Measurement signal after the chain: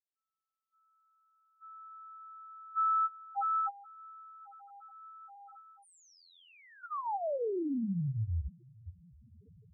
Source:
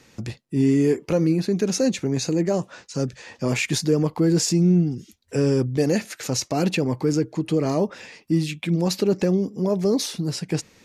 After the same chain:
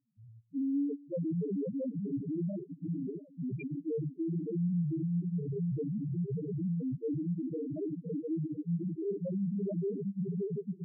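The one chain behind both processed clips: on a send: diffused feedback echo 0.595 s, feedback 76%, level -3.5 dB; on the sum: spring tank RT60 1.1 s, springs 35 ms, chirp 60 ms, DRR 9 dB; level quantiser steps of 22 dB; loudest bins only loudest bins 1; gain -2.5 dB

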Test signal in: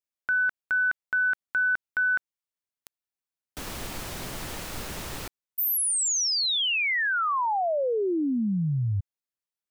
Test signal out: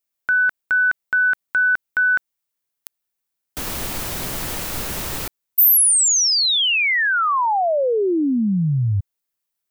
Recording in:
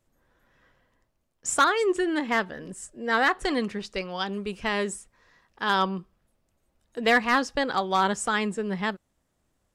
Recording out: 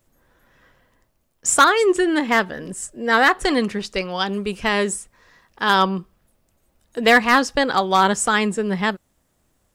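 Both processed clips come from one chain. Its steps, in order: high shelf 11000 Hz +9.5 dB; gain +7 dB

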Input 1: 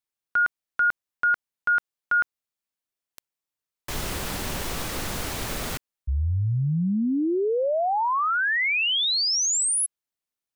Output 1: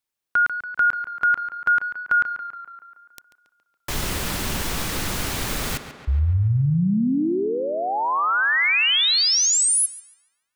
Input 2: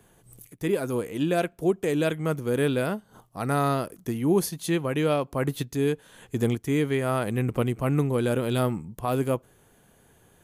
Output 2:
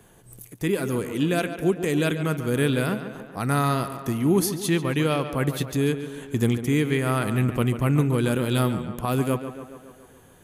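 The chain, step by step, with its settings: dynamic EQ 590 Hz, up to -7 dB, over -39 dBFS, Q 0.93; on a send: tape echo 0.141 s, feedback 66%, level -9.5 dB, low-pass 3500 Hz; on the sum: gain +4.5 dB

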